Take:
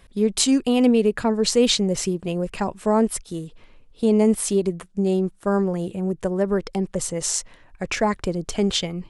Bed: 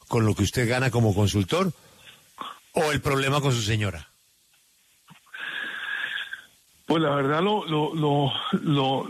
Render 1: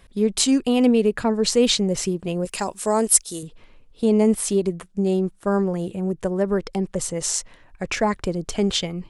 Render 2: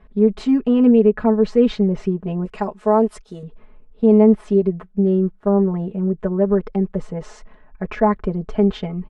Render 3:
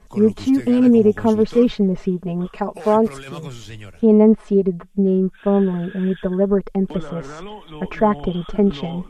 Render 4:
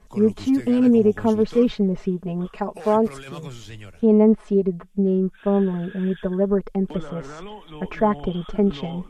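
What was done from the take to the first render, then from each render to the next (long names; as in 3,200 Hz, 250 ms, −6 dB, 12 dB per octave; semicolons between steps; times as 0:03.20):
0:02.45–0:03.43: bass and treble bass −8 dB, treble +15 dB
low-pass filter 1,400 Hz 12 dB per octave; comb filter 4.7 ms, depth 92%
mix in bed −12 dB
level −3 dB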